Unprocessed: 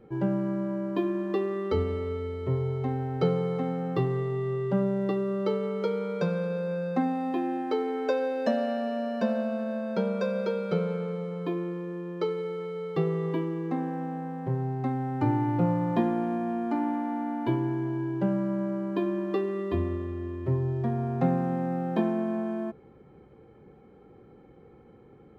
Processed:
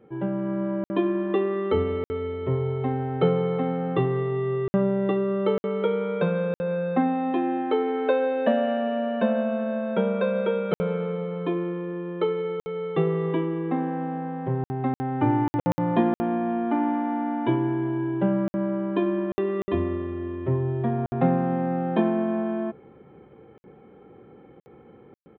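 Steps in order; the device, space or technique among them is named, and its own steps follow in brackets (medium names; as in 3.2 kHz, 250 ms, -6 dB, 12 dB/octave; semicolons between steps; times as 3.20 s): call with lost packets (high-pass 140 Hz 6 dB/octave; resampled via 8 kHz; level rider gain up to 5 dB; lost packets of 60 ms)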